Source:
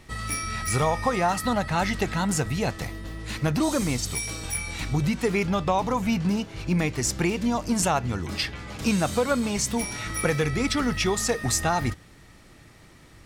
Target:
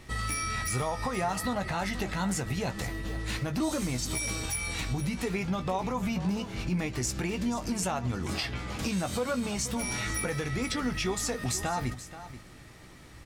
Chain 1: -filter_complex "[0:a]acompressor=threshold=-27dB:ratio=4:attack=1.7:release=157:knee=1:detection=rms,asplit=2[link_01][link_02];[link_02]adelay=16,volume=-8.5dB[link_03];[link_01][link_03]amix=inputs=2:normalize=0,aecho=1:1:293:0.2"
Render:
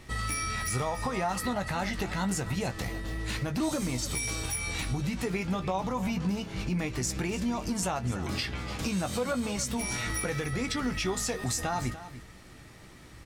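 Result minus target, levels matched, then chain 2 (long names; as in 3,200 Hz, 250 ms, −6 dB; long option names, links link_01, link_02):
echo 188 ms early
-filter_complex "[0:a]acompressor=threshold=-27dB:ratio=4:attack=1.7:release=157:knee=1:detection=rms,asplit=2[link_01][link_02];[link_02]adelay=16,volume=-8.5dB[link_03];[link_01][link_03]amix=inputs=2:normalize=0,aecho=1:1:481:0.2"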